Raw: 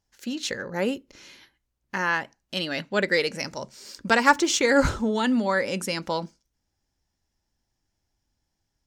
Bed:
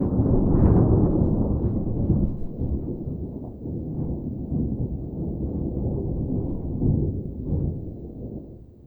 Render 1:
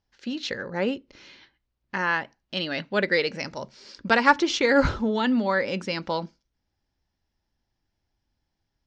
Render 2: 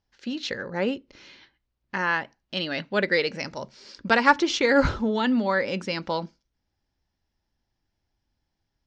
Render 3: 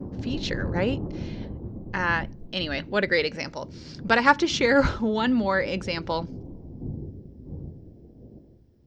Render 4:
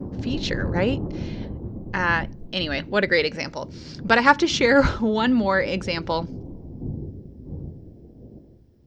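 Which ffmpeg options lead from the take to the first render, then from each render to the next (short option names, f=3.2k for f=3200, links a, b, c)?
-af "lowpass=f=5k:w=0.5412,lowpass=f=5k:w=1.3066"
-af anull
-filter_complex "[1:a]volume=-12.5dB[a];[0:a][a]amix=inputs=2:normalize=0"
-af "volume=3dB,alimiter=limit=-2dB:level=0:latency=1"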